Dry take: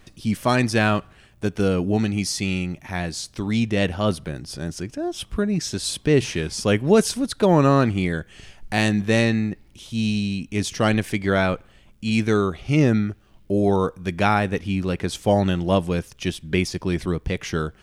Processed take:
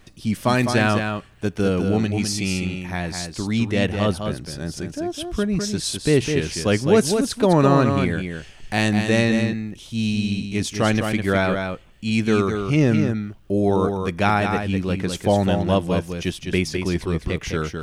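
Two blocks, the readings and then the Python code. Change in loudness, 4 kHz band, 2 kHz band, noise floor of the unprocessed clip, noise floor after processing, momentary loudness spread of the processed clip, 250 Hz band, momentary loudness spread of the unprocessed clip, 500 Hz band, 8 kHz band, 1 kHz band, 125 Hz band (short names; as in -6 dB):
+1.0 dB, +1.0 dB, +1.0 dB, -53 dBFS, -45 dBFS, 10 LU, +1.0 dB, 11 LU, +1.0 dB, +1.0 dB, +1.0 dB, +1.0 dB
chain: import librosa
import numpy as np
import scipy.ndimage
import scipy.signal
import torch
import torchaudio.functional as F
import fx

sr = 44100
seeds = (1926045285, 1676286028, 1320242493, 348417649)

y = x + 10.0 ** (-6.0 / 20.0) * np.pad(x, (int(206 * sr / 1000.0), 0))[:len(x)]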